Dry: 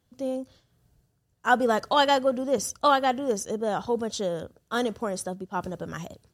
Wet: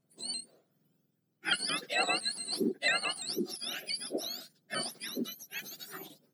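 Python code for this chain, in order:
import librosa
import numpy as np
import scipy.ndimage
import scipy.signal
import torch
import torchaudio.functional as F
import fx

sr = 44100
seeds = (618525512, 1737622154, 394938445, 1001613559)

y = fx.octave_mirror(x, sr, pivot_hz=1500.0)
y = fx.vibrato_shape(y, sr, shape='saw_up', rate_hz=5.9, depth_cents=100.0)
y = y * librosa.db_to_amplitude(-5.0)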